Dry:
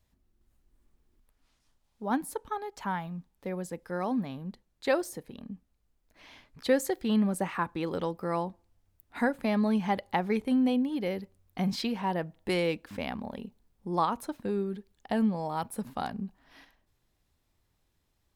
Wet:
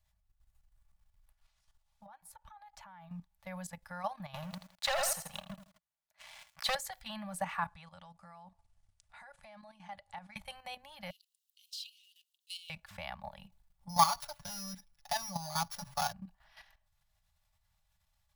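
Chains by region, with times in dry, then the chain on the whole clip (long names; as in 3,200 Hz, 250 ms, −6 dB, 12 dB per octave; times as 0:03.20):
0:02.06–0:03.10: downward compressor 8 to 1, threshold −44 dBFS + high-shelf EQ 3,300 Hz −6 dB
0:04.34–0:06.75: high-pass filter 230 Hz + leveller curve on the samples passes 3 + feedback echo at a low word length 82 ms, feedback 35%, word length 9 bits, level −6.5 dB
0:07.68–0:10.36: bad sample-rate conversion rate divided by 2×, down none, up filtered + downward compressor 2 to 1, threshold −51 dBFS
0:11.10–0:12.70: mu-law and A-law mismatch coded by mu + Chebyshev high-pass filter 2,800 Hz, order 6 + expander for the loud parts, over −51 dBFS
0:13.89–0:16.13: samples sorted by size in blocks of 8 samples + comb filter 7 ms, depth 99%
whole clip: elliptic band-stop filter 170–650 Hz, stop band 40 dB; comb filter 3.5 ms, depth 40%; output level in coarse steps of 11 dB; level +1.5 dB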